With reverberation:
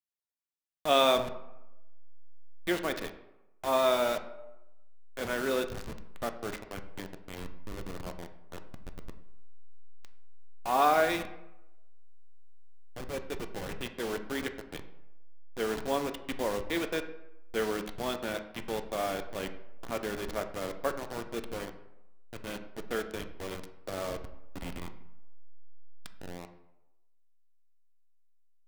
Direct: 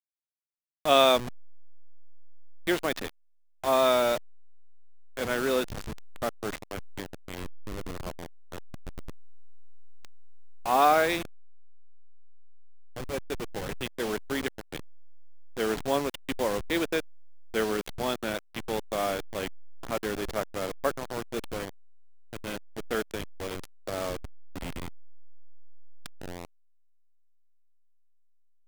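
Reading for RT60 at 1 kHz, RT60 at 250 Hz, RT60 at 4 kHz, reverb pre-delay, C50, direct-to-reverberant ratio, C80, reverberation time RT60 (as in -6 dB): 0.95 s, 0.90 s, 0.55 s, 3 ms, 11.5 dB, 7.0 dB, 13.5 dB, 0.95 s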